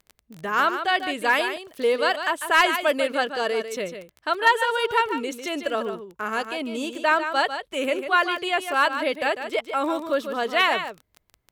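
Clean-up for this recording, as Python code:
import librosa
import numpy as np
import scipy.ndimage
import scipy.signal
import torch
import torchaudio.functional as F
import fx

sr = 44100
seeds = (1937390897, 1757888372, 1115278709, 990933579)

y = fx.fix_declip(x, sr, threshold_db=-9.0)
y = fx.fix_declick_ar(y, sr, threshold=6.5)
y = fx.fix_echo_inverse(y, sr, delay_ms=148, level_db=-9.0)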